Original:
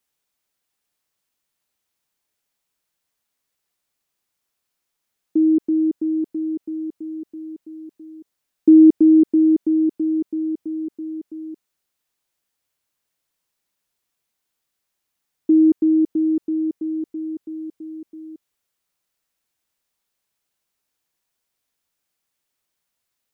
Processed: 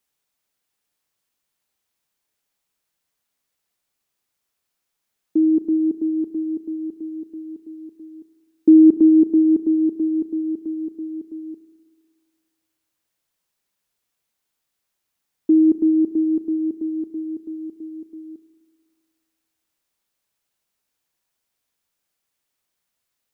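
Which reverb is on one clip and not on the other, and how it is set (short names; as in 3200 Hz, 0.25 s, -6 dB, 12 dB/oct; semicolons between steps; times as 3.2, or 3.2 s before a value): spring tank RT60 1.8 s, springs 31/36 ms, chirp 55 ms, DRR 12 dB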